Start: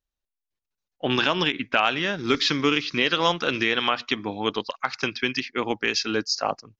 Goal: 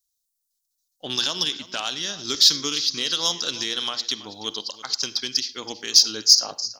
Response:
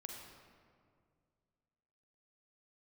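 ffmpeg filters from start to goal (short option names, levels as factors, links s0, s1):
-filter_complex "[0:a]aecho=1:1:327:0.141,asplit=2[s0][s1];[1:a]atrim=start_sample=2205,afade=t=out:st=0.17:d=0.01,atrim=end_sample=7938[s2];[s1][s2]afir=irnorm=-1:irlink=0,volume=0.631[s3];[s0][s3]amix=inputs=2:normalize=0,aexciter=amount=13.6:drive=7.7:freq=3800,volume=0.237"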